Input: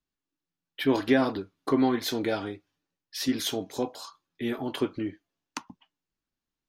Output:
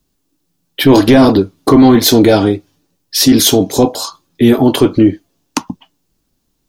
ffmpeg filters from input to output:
-af "equalizer=f=1800:w=0.57:g=-11,apsyclip=21.1,volume=0.841"

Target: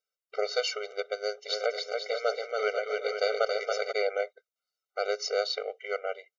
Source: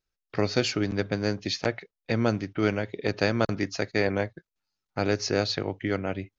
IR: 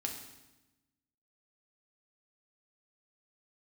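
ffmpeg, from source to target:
-filter_complex "[0:a]asplit=3[s0][s1][s2];[s0]afade=t=out:st=1.48:d=0.02[s3];[s1]aecho=1:1:280|490|647.5|765.6|854.2:0.631|0.398|0.251|0.158|0.1,afade=t=in:st=1.48:d=0.02,afade=t=out:st=3.91:d=0.02[s4];[s2]afade=t=in:st=3.91:d=0.02[s5];[s3][s4][s5]amix=inputs=3:normalize=0,afftfilt=real='re*eq(mod(floor(b*sr/1024/390),2),1)':imag='im*eq(mod(floor(b*sr/1024/390),2),1)':win_size=1024:overlap=0.75"

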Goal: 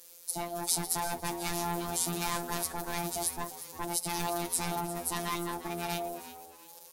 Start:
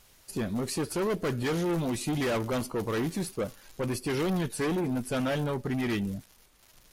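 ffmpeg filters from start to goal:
-filter_complex "[0:a]equalizer=f=2400:w=5.7:g=-10,aeval=exprs='val(0)*sin(2*PI*480*n/s)':c=same,crystalizer=i=4:c=0,afftfilt=real='hypot(re,im)*cos(PI*b)':imag='0':win_size=1024:overlap=0.75,asplit=4[s0][s1][s2][s3];[s1]adelay=350,afreqshift=77,volume=0.2[s4];[s2]adelay=700,afreqshift=154,volume=0.0716[s5];[s3]adelay=1050,afreqshift=231,volume=0.026[s6];[s0][s4][s5][s6]amix=inputs=4:normalize=0"

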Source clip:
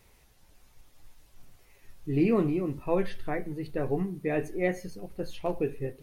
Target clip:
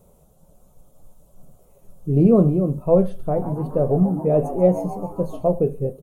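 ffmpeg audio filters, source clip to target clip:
-filter_complex "[0:a]firequalizer=gain_entry='entry(110,0);entry(160,12);entry(300,-1);entry(580,11);entry(830,-1);entry(1300,-4);entry(1800,-24);entry(3300,-12);entry(4700,-16);entry(7300,-1)':delay=0.05:min_phase=1,asplit=3[s0][s1][s2];[s0]afade=t=out:st=3.35:d=0.02[s3];[s1]asplit=7[s4][s5][s6][s7][s8][s9][s10];[s5]adelay=137,afreqshift=110,volume=0.211[s11];[s6]adelay=274,afreqshift=220,volume=0.116[s12];[s7]adelay=411,afreqshift=330,volume=0.0638[s13];[s8]adelay=548,afreqshift=440,volume=0.0351[s14];[s9]adelay=685,afreqshift=550,volume=0.0193[s15];[s10]adelay=822,afreqshift=660,volume=0.0106[s16];[s4][s11][s12][s13][s14][s15][s16]amix=inputs=7:normalize=0,afade=t=in:st=3.35:d=0.02,afade=t=out:st=5.43:d=0.02[s17];[s2]afade=t=in:st=5.43:d=0.02[s18];[s3][s17][s18]amix=inputs=3:normalize=0,volume=1.68"

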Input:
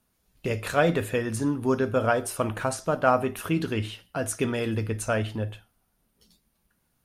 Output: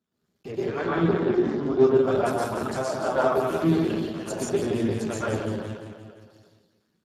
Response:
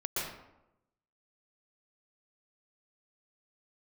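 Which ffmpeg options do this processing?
-filter_complex "[0:a]bandreject=f=510:w=15,flanger=delay=0.5:depth=5.1:regen=-56:speed=0.43:shape=sinusoidal,asplit=3[s0][s1][s2];[s0]afade=t=out:st=0.51:d=0.02[s3];[s1]highpass=130,equalizer=f=340:t=q:w=4:g=8,equalizer=f=630:t=q:w=4:g=-9,equalizer=f=1100:t=q:w=4:g=7,equalizer=f=2700:t=q:w=4:g=-9,equalizer=f=4200:t=q:w=4:g=-9,lowpass=f=4500:w=0.5412,lowpass=f=4500:w=1.3066,afade=t=in:st=0.51:d=0.02,afade=t=out:st=1.88:d=0.02[s4];[s2]afade=t=in:st=1.88:d=0.02[s5];[s3][s4][s5]amix=inputs=3:normalize=0,asettb=1/sr,asplit=3[s6][s7][s8];[s6]atrim=end=2.684[s9];[s7]atrim=start=2.68:end=3.63,asetpts=PTS-STARTPTS,afade=t=in:d=0.004:c=qsin,afade=t=out:st=0.946:d=0.004:c=qsin,aeval=exprs='val(0)+0.0112*(sin(2*PI*60*n/s)+sin(2*PI*2*60*n/s)/2+sin(2*PI*3*60*n/s)/3+sin(2*PI*4*60*n/s)/4+sin(2*PI*5*60*n/s)/5)':c=same[s10];[s8]atrim=start=3.626[s11];[s9][s10]acrossfade=d=0.004:c1=hsin:c2=qsin[s12];[s12][s11]acrossfade=d=0.004:c1=qsin:c2=hsin,aecho=1:1:173|346|519|692|865|1038|1211:0.501|0.276|0.152|0.0834|0.0459|0.0252|0.0139[s13];[1:a]atrim=start_sample=2205,afade=t=out:st=0.44:d=0.01,atrim=end_sample=19845[s14];[s13][s14]afir=irnorm=-1:irlink=0" -ar 32000 -c:a libspeex -b:a 8k

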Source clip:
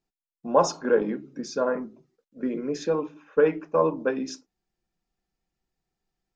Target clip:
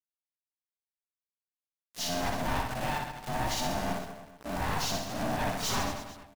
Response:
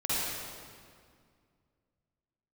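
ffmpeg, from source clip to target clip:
-filter_complex "[0:a]areverse,highshelf=f=3600:g=12,asplit=2[s0][s1];[s1]acompressor=threshold=0.0251:ratio=16,volume=1.19[s2];[s0][s2]amix=inputs=2:normalize=0,acrusher=bits=5:mix=0:aa=0.000001,asplit=2[s3][s4];[s4]asetrate=29433,aresample=44100,atempo=1.49831,volume=0.891[s5];[s3][s5]amix=inputs=2:normalize=0,aeval=exprs='val(0)*sin(2*PI*440*n/s)':c=same,aeval=exprs='(tanh(31.6*val(0)+0.35)-tanh(0.35))/31.6':c=same,aecho=1:1:60|132|218.4|322.1|446.5:0.631|0.398|0.251|0.158|0.1"

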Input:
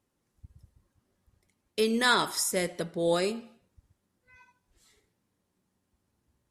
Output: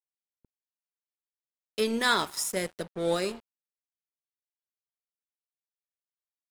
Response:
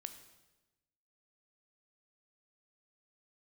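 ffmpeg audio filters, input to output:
-af "aeval=exprs='sgn(val(0))*max(abs(val(0))-0.0106,0)':c=same"

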